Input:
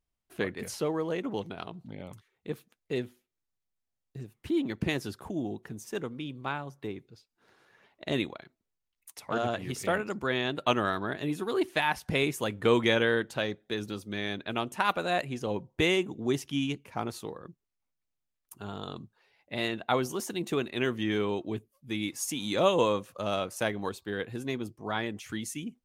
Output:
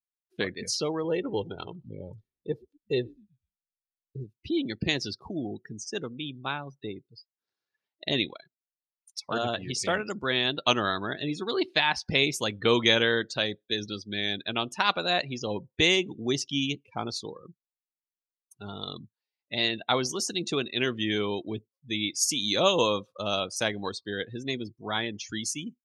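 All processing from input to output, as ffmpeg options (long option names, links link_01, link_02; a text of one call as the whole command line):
ffmpeg -i in.wav -filter_complex "[0:a]asettb=1/sr,asplit=3[link_01][link_02][link_03];[link_01]atrim=end=1.044[link_04];[link_02]atrim=start=1.04:end=4.24,asetpts=PTS-STARTPTS,afade=type=in:duration=0.004:curve=qsin,afade=type=out:start_time=3.196:duration=0.004:curve=qsin,tiltshelf=frequency=820:gain=4,aecho=1:1:2.2:0.47,atrim=end_sample=141120,asplit=5[link_05][link_06][link_07][link_08][link_09];[link_06]adelay=123,afreqshift=-81,volume=-23dB[link_10];[link_07]adelay=246,afreqshift=-162,volume=-27.7dB[link_11];[link_08]adelay=369,afreqshift=-243,volume=-32.5dB[link_12];[link_09]adelay=492,afreqshift=-324,volume=-37.2dB[link_13];[link_05][link_10][link_11][link_12][link_13]amix=inputs=5:normalize=0,atrim=end_sample=141120[link_14];[link_03]atrim=start=4.236[link_15];[link_04][link_14]acrossfade=duration=0.004:curve1=hsin:curve2=qsin[link_16];[link_16][link_15]acrossfade=duration=0.004:curve1=qsin:curve2=hsin,equalizer=frequency=4900:width=0.96:gain=14.5,afftdn=noise_reduction=31:noise_floor=-39" out.wav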